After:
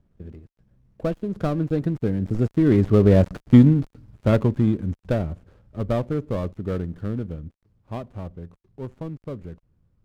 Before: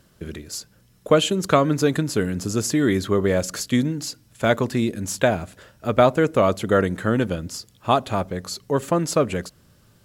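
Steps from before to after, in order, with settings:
gap after every zero crossing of 0.18 ms
source passing by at 0:03.48, 21 m/s, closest 12 metres
spectral tilt −4 dB per octave

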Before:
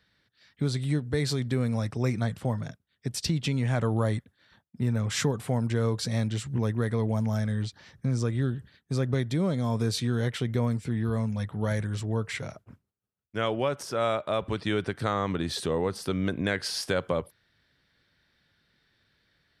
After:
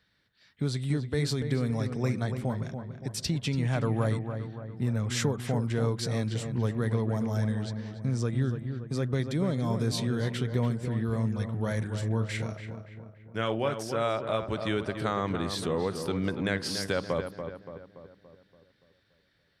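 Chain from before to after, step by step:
0:11.78–0:13.73: double-tracking delay 36 ms −9.5 dB
feedback echo with a low-pass in the loop 286 ms, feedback 53%, low-pass 2,100 Hz, level −7.5 dB
level −2 dB

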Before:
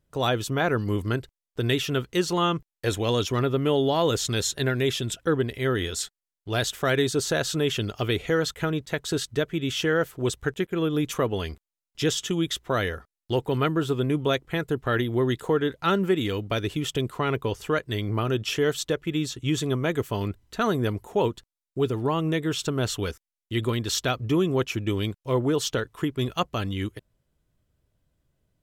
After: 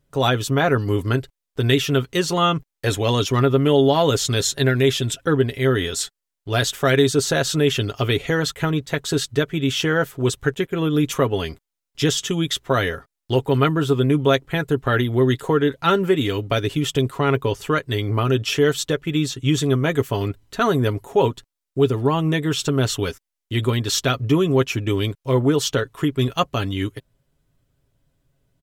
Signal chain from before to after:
comb filter 7.3 ms, depth 45%
level +4.5 dB

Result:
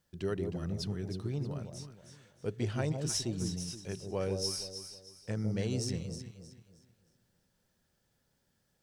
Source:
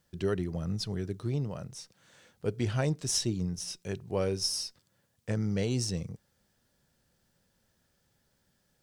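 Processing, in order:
delay that swaps between a low-pass and a high-pass 157 ms, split 850 Hz, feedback 56%, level −4.5 dB
level −4.5 dB

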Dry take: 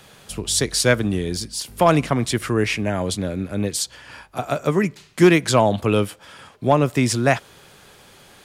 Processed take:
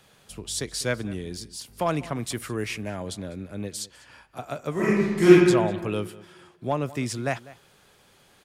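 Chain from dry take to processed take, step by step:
0:02.15–0:02.90: high-shelf EQ 8,800 Hz +10.5 dB
slap from a distant wall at 34 metres, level −19 dB
0:04.72–0:05.30: thrown reverb, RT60 1.5 s, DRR −10 dB
level −10 dB

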